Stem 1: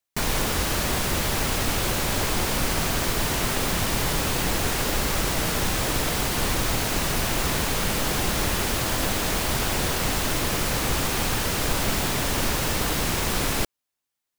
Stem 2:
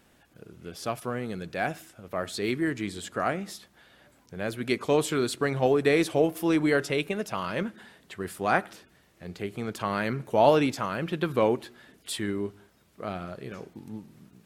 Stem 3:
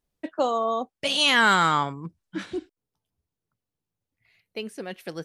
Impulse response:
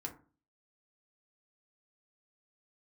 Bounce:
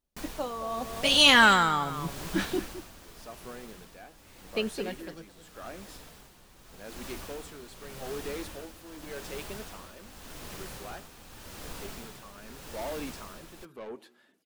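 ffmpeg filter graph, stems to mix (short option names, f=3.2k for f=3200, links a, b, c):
-filter_complex "[0:a]volume=-3.5dB,afade=t=out:st=2.76:d=0.53:silence=0.334965,afade=t=in:st=6.83:d=0.23:silence=0.473151[a];[1:a]highpass=220,asoftclip=type=tanh:threshold=-22.5dB,adelay=2400,volume=-6dB[b];[2:a]dynaudnorm=f=100:g=17:m=11.5dB,volume=1dB,asplit=2[c][d];[d]volume=-12.5dB,aecho=0:1:213:1[e];[a][b][c][e]amix=inputs=4:normalize=0,equalizer=f=2.1k:w=5.6:g=-2.5,flanger=delay=3.2:depth=2.4:regen=-63:speed=0.7:shape=triangular,tremolo=f=0.85:d=0.66"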